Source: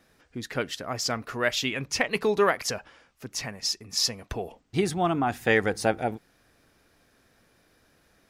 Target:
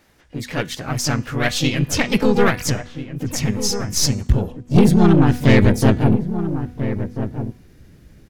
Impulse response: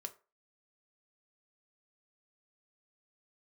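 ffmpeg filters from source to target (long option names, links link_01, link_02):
-filter_complex "[0:a]aeval=exprs='0.422*(cos(1*acos(clip(val(0)/0.422,-1,1)))-cos(1*PI/2))+0.00531*(cos(8*acos(clip(val(0)/0.422,-1,1)))-cos(8*PI/2))':channel_layout=same,asubboost=boost=10:cutoff=210,asplit=3[link_01][link_02][link_03];[link_02]asetrate=52444,aresample=44100,atempo=0.840896,volume=-1dB[link_04];[link_03]asetrate=88200,aresample=44100,atempo=0.5,volume=-12dB[link_05];[link_01][link_04][link_05]amix=inputs=3:normalize=0,bandreject=frequency=245.3:width_type=h:width=4,bandreject=frequency=490.6:width_type=h:width=4,bandreject=frequency=735.9:width_type=h:width=4,bandreject=frequency=981.2:width_type=h:width=4,bandreject=frequency=1226.5:width_type=h:width=4,bandreject=frequency=1471.8:width_type=h:width=4,bandreject=frequency=1717.1:width_type=h:width=4,bandreject=frequency=1962.4:width_type=h:width=4,bandreject=frequency=2207.7:width_type=h:width=4,bandreject=frequency=2453:width_type=h:width=4,bandreject=frequency=2698.3:width_type=h:width=4,bandreject=frequency=2943.6:width_type=h:width=4,bandreject=frequency=3188.9:width_type=h:width=4,bandreject=frequency=3434.2:width_type=h:width=4,bandreject=frequency=3679.5:width_type=h:width=4,bandreject=frequency=3924.8:width_type=h:width=4,bandreject=frequency=4170.1:width_type=h:width=4,bandreject=frequency=4415.4:width_type=h:width=4,bandreject=frequency=4660.7:width_type=h:width=4,bandreject=frequency=4906:width_type=h:width=4,bandreject=frequency=5151.3:width_type=h:width=4,bandreject=frequency=5396.6:width_type=h:width=4,bandreject=frequency=5641.9:width_type=h:width=4,bandreject=frequency=5887.2:width_type=h:width=4,bandreject=frequency=6132.5:width_type=h:width=4,bandreject=frequency=6377.8:width_type=h:width=4,bandreject=frequency=6623.1:width_type=h:width=4,bandreject=frequency=6868.4:width_type=h:width=4,bandreject=frequency=7113.7:width_type=h:width=4,bandreject=frequency=7359:width_type=h:width=4,bandreject=frequency=7604.3:width_type=h:width=4,bandreject=frequency=7849.6:width_type=h:width=4,bandreject=frequency=8094.9:width_type=h:width=4,bandreject=frequency=8340.2:width_type=h:width=4,bandreject=frequency=8585.5:width_type=h:width=4,bandreject=frequency=8830.8:width_type=h:width=4,aeval=exprs='(tanh(3.16*val(0)+0.45)-tanh(0.45))/3.16':channel_layout=same,asplit=2[link_06][link_07];[link_07]adelay=1341,volume=-10dB,highshelf=frequency=4000:gain=-30.2[link_08];[link_06][link_08]amix=inputs=2:normalize=0,volume=4.5dB"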